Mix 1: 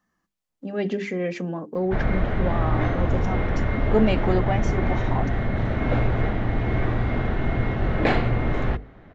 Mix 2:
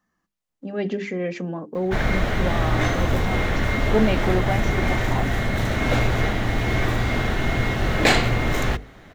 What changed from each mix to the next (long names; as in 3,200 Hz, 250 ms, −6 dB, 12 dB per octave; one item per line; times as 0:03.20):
background: remove head-to-tape spacing loss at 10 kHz 37 dB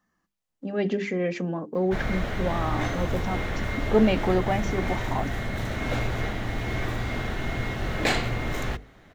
background −7.0 dB